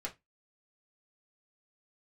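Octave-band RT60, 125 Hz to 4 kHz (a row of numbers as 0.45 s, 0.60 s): 0.20 s, 0.20 s, 0.20 s, 0.20 s, 0.20 s, 0.15 s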